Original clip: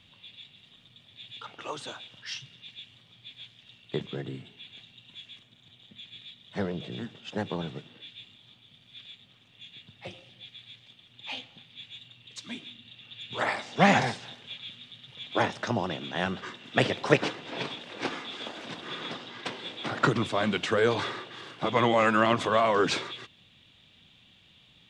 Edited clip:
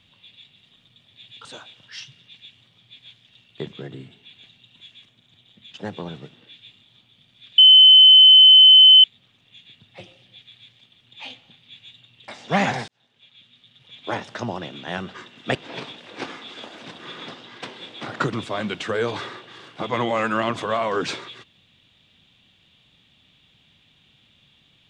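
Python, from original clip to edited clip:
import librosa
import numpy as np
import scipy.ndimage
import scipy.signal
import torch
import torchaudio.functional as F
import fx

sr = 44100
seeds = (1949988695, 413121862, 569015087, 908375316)

y = fx.edit(x, sr, fx.cut(start_s=1.45, length_s=0.34),
    fx.cut(start_s=6.08, length_s=1.19),
    fx.insert_tone(at_s=9.11, length_s=1.46, hz=3050.0, db=-6.0),
    fx.cut(start_s=12.35, length_s=1.21),
    fx.fade_in_span(start_s=14.16, length_s=1.5),
    fx.cut(start_s=16.83, length_s=0.55), tone=tone)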